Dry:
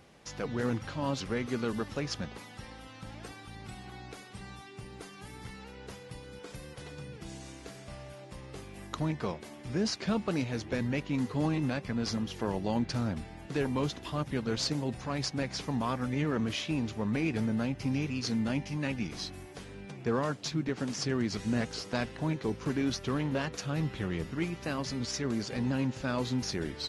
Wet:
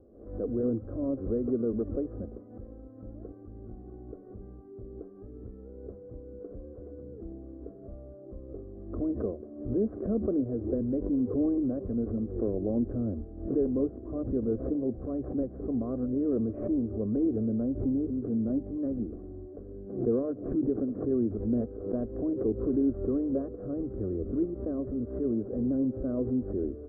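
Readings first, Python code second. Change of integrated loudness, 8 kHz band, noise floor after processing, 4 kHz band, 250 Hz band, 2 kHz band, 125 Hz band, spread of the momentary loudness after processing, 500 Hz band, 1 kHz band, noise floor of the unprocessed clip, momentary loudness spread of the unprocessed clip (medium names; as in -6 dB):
+2.0 dB, under -35 dB, -47 dBFS, under -40 dB, +4.0 dB, under -25 dB, -3.5 dB, 18 LU, +4.5 dB, -13.5 dB, -49 dBFS, 15 LU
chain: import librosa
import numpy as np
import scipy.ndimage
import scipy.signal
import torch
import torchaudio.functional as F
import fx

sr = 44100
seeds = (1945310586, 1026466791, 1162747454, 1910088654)

y = scipy.signal.sosfilt(scipy.signal.bessel(8, 560.0, 'lowpass', norm='mag', fs=sr, output='sos'), x)
y = fx.fixed_phaser(y, sr, hz=370.0, stages=4)
y = fx.pre_swell(y, sr, db_per_s=86.0)
y = F.gain(torch.from_numpy(y), 7.0).numpy()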